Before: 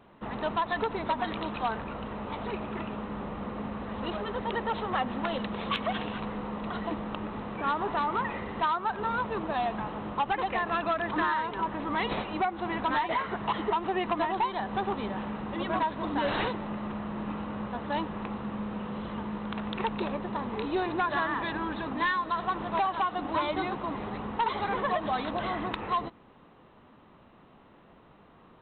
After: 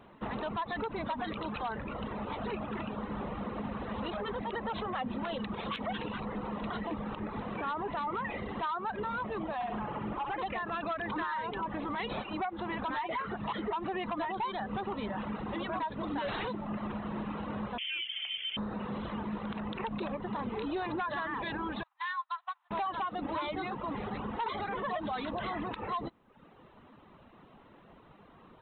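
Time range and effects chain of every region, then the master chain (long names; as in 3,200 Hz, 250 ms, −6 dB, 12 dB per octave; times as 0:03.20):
0:09.54–0:10.37: parametric band 3,800 Hz −7.5 dB 0.44 octaves + downward compressor, threshold −30 dBFS + flutter between parallel walls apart 11.3 metres, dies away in 0.95 s
0:17.78–0:18.57: parametric band 2,600 Hz −9.5 dB 1.7 octaves + voice inversion scrambler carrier 3,300 Hz
0:21.83–0:22.71: Butterworth high-pass 820 Hz 48 dB per octave + expander for the loud parts 2.5 to 1, over −45 dBFS
whole clip: reverb reduction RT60 0.76 s; brickwall limiter −29.5 dBFS; level +1.5 dB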